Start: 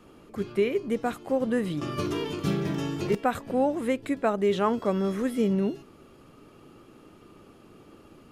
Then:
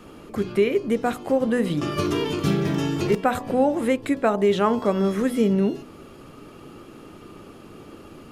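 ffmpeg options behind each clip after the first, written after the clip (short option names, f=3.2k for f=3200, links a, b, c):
-filter_complex "[0:a]bandreject=f=62.17:t=h:w=4,bandreject=f=124.34:t=h:w=4,bandreject=f=186.51:t=h:w=4,bandreject=f=248.68:t=h:w=4,bandreject=f=310.85:t=h:w=4,bandreject=f=373.02:t=h:w=4,bandreject=f=435.19:t=h:w=4,bandreject=f=497.36:t=h:w=4,bandreject=f=559.53:t=h:w=4,bandreject=f=621.7:t=h:w=4,bandreject=f=683.87:t=h:w=4,bandreject=f=746.04:t=h:w=4,bandreject=f=808.21:t=h:w=4,bandreject=f=870.38:t=h:w=4,bandreject=f=932.55:t=h:w=4,bandreject=f=994.72:t=h:w=4,bandreject=f=1.05689k:t=h:w=4,bandreject=f=1.11906k:t=h:w=4,bandreject=f=1.18123k:t=h:w=4,asplit=2[a][b];[b]acompressor=threshold=-34dB:ratio=6,volume=0dB[c];[a][c]amix=inputs=2:normalize=0,volume=3dB"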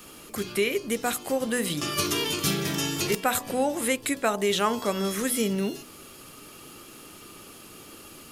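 -af "crystalizer=i=9:c=0,volume=-7.5dB"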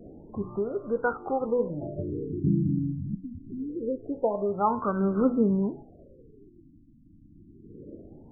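-af "aphaser=in_gain=1:out_gain=1:delay=2.6:decay=0.55:speed=0.38:type=triangular,afftfilt=real='re*lt(b*sr/1024,300*pow(1600/300,0.5+0.5*sin(2*PI*0.25*pts/sr)))':imag='im*lt(b*sr/1024,300*pow(1600/300,0.5+0.5*sin(2*PI*0.25*pts/sr)))':win_size=1024:overlap=0.75"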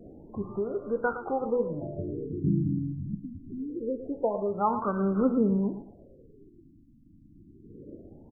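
-af "aecho=1:1:113|226|339:0.266|0.0585|0.0129,volume=-1.5dB"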